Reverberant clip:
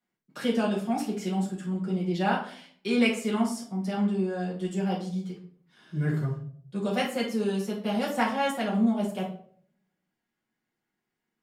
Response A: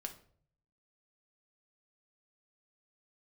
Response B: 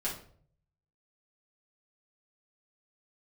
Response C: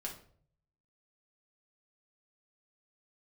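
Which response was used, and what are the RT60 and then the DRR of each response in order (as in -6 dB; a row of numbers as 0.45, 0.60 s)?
B; 0.55, 0.55, 0.55 s; 4.0, -7.0, -2.0 dB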